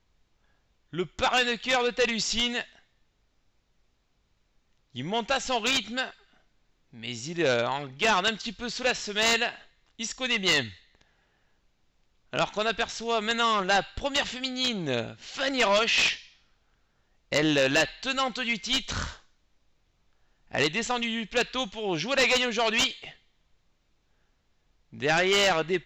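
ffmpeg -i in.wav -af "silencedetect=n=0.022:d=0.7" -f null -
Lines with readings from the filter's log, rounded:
silence_start: 0.00
silence_end: 0.93 | silence_duration: 0.93
silence_start: 2.63
silence_end: 4.96 | silence_duration: 2.34
silence_start: 6.10
silence_end: 7.03 | silence_duration: 0.93
silence_start: 10.69
silence_end: 12.33 | silence_duration: 1.64
silence_start: 16.16
silence_end: 17.32 | silence_duration: 1.17
silence_start: 19.10
silence_end: 20.53 | silence_duration: 1.43
silence_start: 23.08
silence_end: 25.00 | silence_duration: 1.92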